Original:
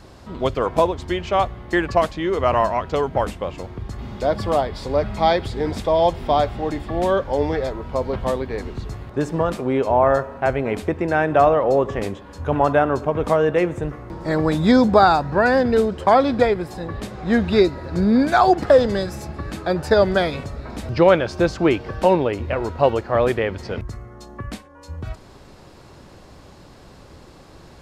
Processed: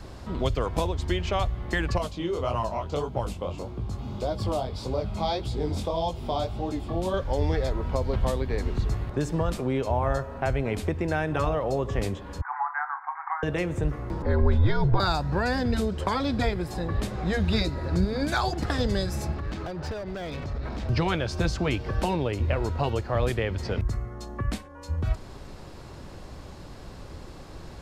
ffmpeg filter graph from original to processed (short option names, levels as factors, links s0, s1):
-filter_complex "[0:a]asettb=1/sr,asplit=3[s0][s1][s2];[s0]atrim=end=1.984[s3];[s1]atrim=start=1.98:end=7.14,asetpts=PTS-STARTPTS,afade=t=in:d=0.004:c=qsin,afade=t=out:st=5.156:d=0.004:c=qsin,highpass=66,equalizer=f=1800:t=o:w=0.52:g=-11,flanger=delay=16:depth=7.7:speed=1.7[s4];[s2]atrim=start=7.136[s5];[s3][s4]acrossfade=d=0.004:c1=hsin:c2=qsin[s6];[s6][s5]acrossfade=d=0.004:c1=qsin:c2=hsin,asettb=1/sr,asplit=3[s7][s8][s9];[s7]atrim=end=12.414[s10];[s8]atrim=start=12.41:end=13.43,asetpts=PTS-STARTPTS,afade=t=in:d=0.004:c=qsin,afade=t=out:st=1.016:d=0.004:c=qsin,asuperpass=centerf=1300:order=20:qfactor=0.95,asplit=2[s11][s12];[s12]adelay=28,volume=0.335[s13];[s11][s13]amix=inputs=2:normalize=0,atrim=end_sample=44982[s14];[s9]atrim=start=13.426[s15];[s10][s14]acrossfade=d=0.004:c1=hsin:c2=qsin[s16];[s16][s15]acrossfade=d=0.004:c1=qsin:c2=hsin,asettb=1/sr,asplit=3[s17][s18][s19];[s17]atrim=end=14.224[s20];[s18]atrim=start=14.22:end=15,asetpts=PTS-STARTPTS,afade=t=in:d=0.004:c=qsin,afade=t=out:st=0.776:d=0.004:c=qsin,lowpass=2100,aecho=1:1:1.9:0.38,atrim=end_sample=34398,afreqshift=-75[s21];[s19]atrim=start=14.996[s22];[s20][s21]acrossfade=d=0.004:c1=hsin:c2=qsin[s23];[s23][s22]acrossfade=d=0.004:c1=qsin:c2=hsin,asettb=1/sr,asplit=3[s24][s25][s26];[s24]atrim=end=19.344[s27];[s25]atrim=start=19.34:end=20.89,asetpts=PTS-STARTPTS,afade=t=in:d=0.004:c=qsin,afade=t=out:st=1.546:d=0.004:c=qsin,lowpass=f=6100:w=0.5412,lowpass=f=6100:w=1.3066,acompressor=threshold=0.0355:ratio=10:attack=3.2:release=140:knee=1:detection=peak,asoftclip=type=hard:threshold=0.0282[s28];[s26]atrim=start=20.886[s29];[s27][s28]acrossfade=d=0.004:c1=hsin:c2=qsin[s30];[s30][s29]acrossfade=d=0.004:c1=qsin:c2=hsin,afftfilt=real='re*lt(hypot(re,im),1.58)':imag='im*lt(hypot(re,im),1.58)':win_size=1024:overlap=0.75,lowshelf=f=79:g=8.5,acrossover=split=130|3000[s31][s32][s33];[s32]acompressor=threshold=0.0355:ratio=2.5[s34];[s31][s34][s33]amix=inputs=3:normalize=0"